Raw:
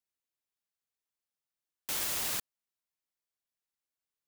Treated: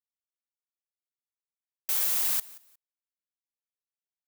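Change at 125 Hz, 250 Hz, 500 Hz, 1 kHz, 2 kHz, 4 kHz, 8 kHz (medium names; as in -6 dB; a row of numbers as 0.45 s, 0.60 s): under -10 dB, no reading, -3.0 dB, -1.0 dB, -0.5 dB, +0.5 dB, +4.0 dB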